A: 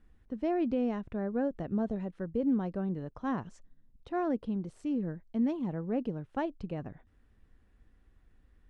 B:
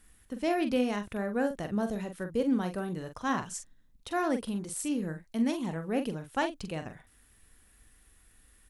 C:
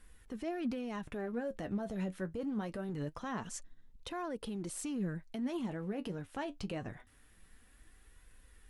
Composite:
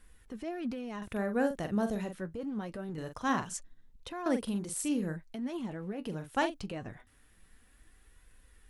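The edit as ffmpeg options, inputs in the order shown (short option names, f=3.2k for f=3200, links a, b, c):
-filter_complex "[1:a]asplit=4[a][b][c][d];[2:a]asplit=5[e][f][g][h][i];[e]atrim=end=1.022[j];[a]atrim=start=1.018:end=2.152[k];[f]atrim=start=2.148:end=2.982[l];[b]atrim=start=2.978:end=3.572[m];[g]atrim=start=3.568:end=4.262[n];[c]atrim=start=4.258:end=5.162[o];[h]atrim=start=5.158:end=6.19[p];[d]atrim=start=6.03:end=6.67[q];[i]atrim=start=6.51[r];[j][k]acrossfade=d=0.004:c1=hsin:c2=hsin[s];[s][l]acrossfade=d=0.004:c1=hsin:c2=hsin[t];[t][m]acrossfade=d=0.004:c1=hsin:c2=hsin[u];[u][n]acrossfade=d=0.004:c1=hsin:c2=hsin[v];[v][o]acrossfade=d=0.004:c1=hsin:c2=hsin[w];[w][p]acrossfade=d=0.004:c1=hsin:c2=hsin[x];[x][q]acrossfade=d=0.16:c1=tri:c2=tri[y];[y][r]acrossfade=d=0.16:c1=tri:c2=tri"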